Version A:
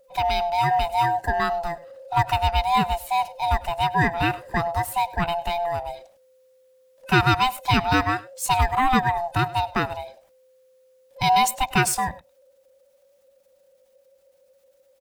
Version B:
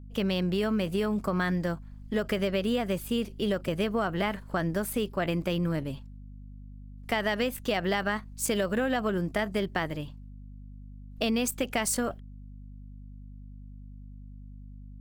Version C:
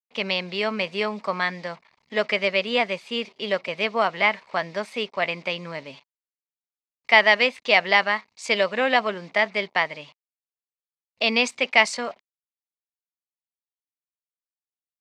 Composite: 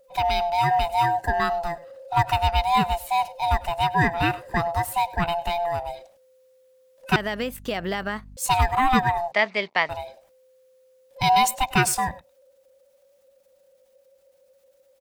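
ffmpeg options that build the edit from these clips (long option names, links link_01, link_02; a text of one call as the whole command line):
ffmpeg -i take0.wav -i take1.wav -i take2.wav -filter_complex "[0:a]asplit=3[link_01][link_02][link_03];[link_01]atrim=end=7.162[link_04];[1:a]atrim=start=7.158:end=8.372[link_05];[link_02]atrim=start=8.368:end=9.322[link_06];[2:a]atrim=start=9.318:end=9.892[link_07];[link_03]atrim=start=9.888[link_08];[link_04][link_05]acrossfade=duration=0.004:curve1=hsin:curve2=hsin[link_09];[link_09][link_06]acrossfade=duration=0.004:curve1=hsin:curve2=hsin[link_10];[link_10][link_07]acrossfade=duration=0.004:curve1=hsin:curve2=hsin[link_11];[link_11][link_08]acrossfade=duration=0.004:curve1=hsin:curve2=hsin" out.wav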